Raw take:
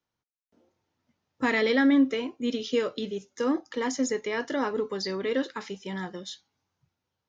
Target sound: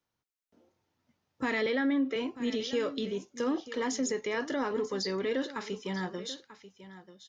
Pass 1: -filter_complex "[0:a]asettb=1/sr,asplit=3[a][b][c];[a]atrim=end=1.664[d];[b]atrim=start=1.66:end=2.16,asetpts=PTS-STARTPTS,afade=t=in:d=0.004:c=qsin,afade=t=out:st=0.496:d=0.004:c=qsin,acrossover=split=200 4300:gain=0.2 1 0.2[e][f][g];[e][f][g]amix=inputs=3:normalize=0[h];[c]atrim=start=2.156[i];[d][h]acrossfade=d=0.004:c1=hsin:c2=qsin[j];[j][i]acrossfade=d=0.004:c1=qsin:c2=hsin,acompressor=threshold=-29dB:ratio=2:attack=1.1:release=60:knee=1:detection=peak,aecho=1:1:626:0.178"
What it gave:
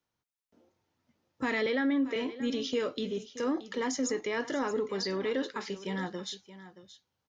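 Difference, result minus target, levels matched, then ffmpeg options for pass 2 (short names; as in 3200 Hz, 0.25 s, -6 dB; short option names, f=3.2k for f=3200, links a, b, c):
echo 0.313 s early
-filter_complex "[0:a]asettb=1/sr,asplit=3[a][b][c];[a]atrim=end=1.664[d];[b]atrim=start=1.66:end=2.16,asetpts=PTS-STARTPTS,afade=t=in:d=0.004:c=qsin,afade=t=out:st=0.496:d=0.004:c=qsin,acrossover=split=200 4300:gain=0.2 1 0.2[e][f][g];[e][f][g]amix=inputs=3:normalize=0[h];[c]atrim=start=2.156[i];[d][h]acrossfade=d=0.004:c1=hsin:c2=qsin[j];[j][i]acrossfade=d=0.004:c1=qsin:c2=hsin,acompressor=threshold=-29dB:ratio=2:attack=1.1:release=60:knee=1:detection=peak,aecho=1:1:939:0.178"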